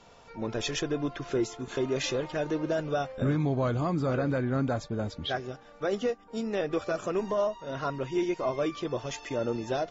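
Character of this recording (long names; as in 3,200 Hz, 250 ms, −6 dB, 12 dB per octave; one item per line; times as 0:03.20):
background noise floor −54 dBFS
spectral slope −5.5 dB per octave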